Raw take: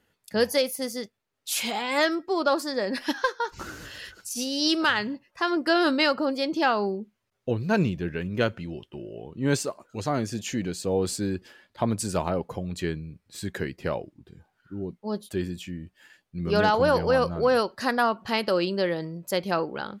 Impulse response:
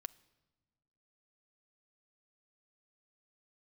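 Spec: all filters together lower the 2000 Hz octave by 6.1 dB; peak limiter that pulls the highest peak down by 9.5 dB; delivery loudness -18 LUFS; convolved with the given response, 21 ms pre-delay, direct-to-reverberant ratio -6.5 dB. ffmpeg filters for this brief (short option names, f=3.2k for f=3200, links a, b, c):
-filter_complex "[0:a]equalizer=f=2k:t=o:g=-8.5,alimiter=limit=-21dB:level=0:latency=1,asplit=2[a][b];[1:a]atrim=start_sample=2205,adelay=21[c];[b][c]afir=irnorm=-1:irlink=0,volume=11dB[d];[a][d]amix=inputs=2:normalize=0,volume=6.5dB"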